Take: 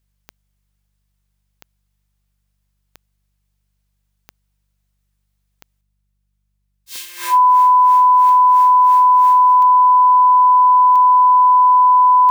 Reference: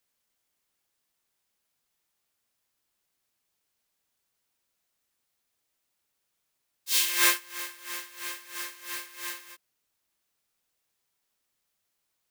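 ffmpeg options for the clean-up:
ffmpeg -i in.wav -af "adeclick=threshold=4,bandreject=frequency=49.1:width_type=h:width=4,bandreject=frequency=98.2:width_type=h:width=4,bandreject=frequency=147.3:width_type=h:width=4,bandreject=frequency=196.4:width_type=h:width=4,bandreject=frequency=1000:width=30,asetnsamples=nb_out_samples=441:pad=0,asendcmd='5.81 volume volume 6.5dB',volume=0dB" out.wav

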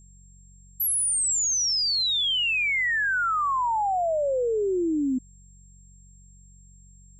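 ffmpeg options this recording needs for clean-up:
ffmpeg -i in.wav -af "bandreject=frequency=46.3:width_type=h:width=4,bandreject=frequency=92.6:width_type=h:width=4,bandreject=frequency=138.9:width_type=h:width=4,bandreject=frequency=185.2:width_type=h:width=4,bandreject=frequency=7500:width=30" out.wav

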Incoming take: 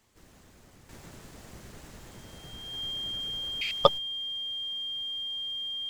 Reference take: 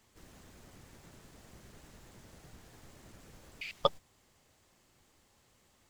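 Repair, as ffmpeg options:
ffmpeg -i in.wav -af "bandreject=frequency=3200:width=30,asetnsamples=nb_out_samples=441:pad=0,asendcmd='0.89 volume volume -8dB',volume=0dB" out.wav

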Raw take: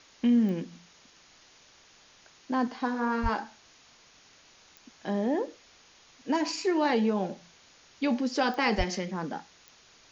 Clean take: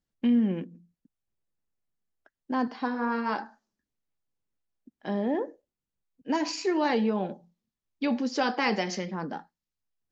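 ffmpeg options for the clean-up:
ffmpeg -i in.wav -filter_complex "[0:a]adeclick=threshold=4,asplit=3[link_01][link_02][link_03];[link_01]afade=type=out:start_time=3.22:duration=0.02[link_04];[link_02]highpass=frequency=140:width=0.5412,highpass=frequency=140:width=1.3066,afade=type=in:start_time=3.22:duration=0.02,afade=type=out:start_time=3.34:duration=0.02[link_05];[link_03]afade=type=in:start_time=3.34:duration=0.02[link_06];[link_04][link_05][link_06]amix=inputs=3:normalize=0,asplit=3[link_07][link_08][link_09];[link_07]afade=type=out:start_time=8.77:duration=0.02[link_10];[link_08]highpass=frequency=140:width=0.5412,highpass=frequency=140:width=1.3066,afade=type=in:start_time=8.77:duration=0.02,afade=type=out:start_time=8.89:duration=0.02[link_11];[link_09]afade=type=in:start_time=8.89:duration=0.02[link_12];[link_10][link_11][link_12]amix=inputs=3:normalize=0,afwtdn=0.0022" out.wav

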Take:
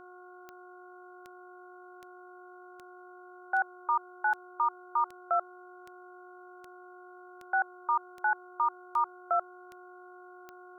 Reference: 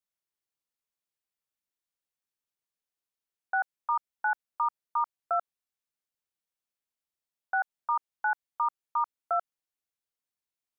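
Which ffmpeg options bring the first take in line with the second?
ffmpeg -i in.wav -af "adeclick=threshold=4,bandreject=frequency=362.2:width_type=h:width=4,bandreject=frequency=724.4:width_type=h:width=4,bandreject=frequency=1086.6:width_type=h:width=4,bandreject=frequency=1448.8:width_type=h:width=4,bandreject=frequency=1400:width=30,afftdn=noise_reduction=30:noise_floor=-51" out.wav

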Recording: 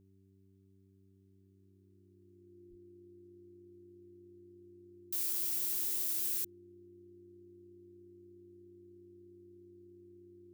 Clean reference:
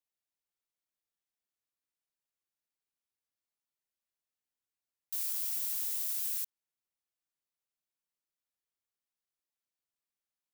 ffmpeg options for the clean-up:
ffmpeg -i in.wav -filter_complex "[0:a]bandreject=frequency=96.7:width_type=h:width=4,bandreject=frequency=193.4:width_type=h:width=4,bandreject=frequency=290.1:width_type=h:width=4,bandreject=frequency=386.8:width_type=h:width=4,bandreject=frequency=350:width=30,asplit=3[link_01][link_02][link_03];[link_01]afade=type=out:start_time=2.69:duration=0.02[link_04];[link_02]highpass=frequency=140:width=0.5412,highpass=frequency=140:width=1.3066,afade=type=in:start_time=2.69:duration=0.02,afade=type=out:start_time=2.81:duration=0.02[link_05];[link_03]afade=type=in:start_time=2.81:duration=0.02[link_06];[link_04][link_05][link_06]amix=inputs=3:normalize=0" out.wav

